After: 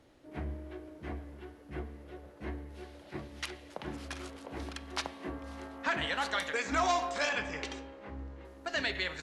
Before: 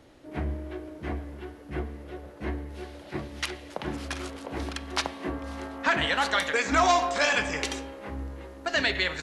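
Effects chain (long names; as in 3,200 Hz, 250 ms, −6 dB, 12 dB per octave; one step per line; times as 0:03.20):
0:07.29–0:08.45: high-frequency loss of the air 85 metres
level −7.5 dB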